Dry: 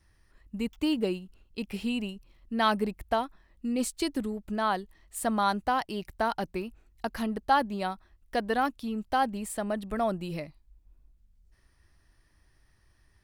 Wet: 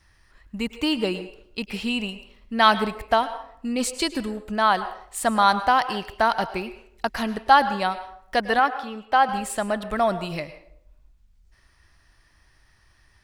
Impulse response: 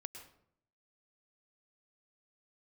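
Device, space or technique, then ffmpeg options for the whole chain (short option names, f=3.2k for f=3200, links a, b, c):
filtered reverb send: -filter_complex "[0:a]asplit=2[a][b];[b]highpass=590,lowpass=8.7k[c];[1:a]atrim=start_sample=2205[d];[c][d]afir=irnorm=-1:irlink=0,volume=4.5dB[e];[a][e]amix=inputs=2:normalize=0,asettb=1/sr,asplit=3[f][g][h];[f]atrim=end=8.594[i];[g]atrim=start=8.59:end=9.29,asetpts=PTS-STARTPTS,afade=t=in:d=0.004:c=qsin,afade=t=out:st=0.696:d=0.004:c=qsin,bass=f=250:g=-12,treble=f=4k:g=-10[j];[h]atrim=start=9.286[k];[i][j]acrossfade=d=0.004:c1=hsin:c2=qsin[l];[l][k]acrossfade=d=0.004:c1=qsin:c2=hsin,volume=4dB"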